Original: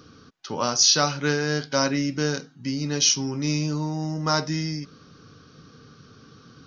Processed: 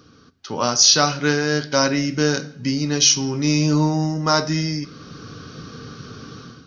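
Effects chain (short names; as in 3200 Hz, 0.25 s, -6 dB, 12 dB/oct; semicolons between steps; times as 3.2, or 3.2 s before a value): AGC gain up to 13.5 dB; on a send: reverb RT60 0.70 s, pre-delay 3 ms, DRR 14 dB; on the sum: gain -1 dB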